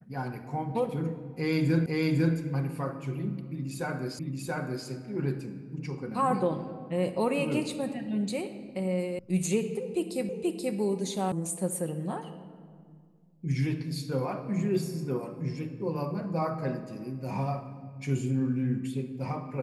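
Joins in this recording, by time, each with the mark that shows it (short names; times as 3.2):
1.86 repeat of the last 0.5 s
4.19 repeat of the last 0.68 s
9.19 sound cut off
10.29 repeat of the last 0.48 s
11.32 sound cut off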